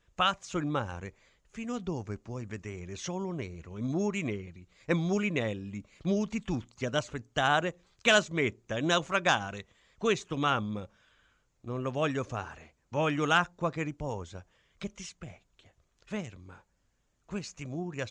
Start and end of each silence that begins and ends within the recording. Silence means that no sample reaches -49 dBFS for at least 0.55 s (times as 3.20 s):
10.86–11.64 s
16.59–17.29 s